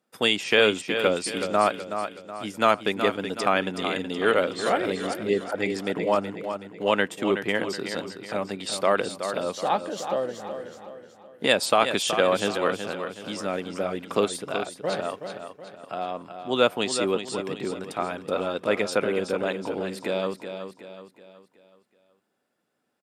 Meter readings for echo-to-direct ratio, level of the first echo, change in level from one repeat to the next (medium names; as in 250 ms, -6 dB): -7.5 dB, -8.5 dB, -7.5 dB